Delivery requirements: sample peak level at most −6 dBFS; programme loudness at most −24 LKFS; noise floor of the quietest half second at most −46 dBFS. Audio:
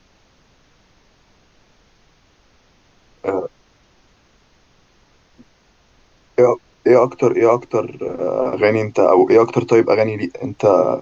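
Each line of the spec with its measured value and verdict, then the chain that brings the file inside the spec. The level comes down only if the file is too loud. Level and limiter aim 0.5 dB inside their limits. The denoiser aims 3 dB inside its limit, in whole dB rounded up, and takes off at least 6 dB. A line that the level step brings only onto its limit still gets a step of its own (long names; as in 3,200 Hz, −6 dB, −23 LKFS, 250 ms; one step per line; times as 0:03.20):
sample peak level −2.0 dBFS: out of spec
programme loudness −16.5 LKFS: out of spec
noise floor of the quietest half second −56 dBFS: in spec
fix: level −8 dB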